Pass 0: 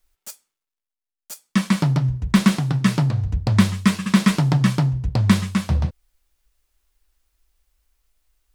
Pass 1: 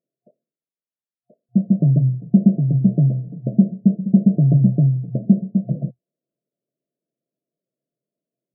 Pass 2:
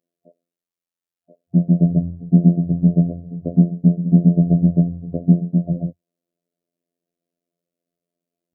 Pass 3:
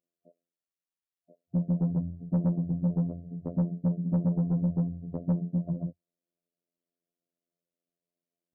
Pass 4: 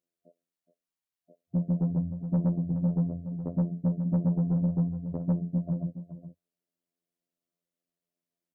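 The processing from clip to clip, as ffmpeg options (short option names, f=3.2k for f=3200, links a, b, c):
-af "lowshelf=f=160:g=9.5,afftfilt=real='re*between(b*sr/4096,120,710)':imag='im*between(b*sr/4096,120,710)':win_size=4096:overlap=0.75,volume=-1dB"
-af "afftfilt=real='hypot(re,im)*cos(PI*b)':imag='0':win_size=2048:overlap=0.75,volume=6dB"
-af "asoftclip=type=tanh:threshold=-12.5dB,volume=-8.5dB"
-af "aecho=1:1:419:0.266"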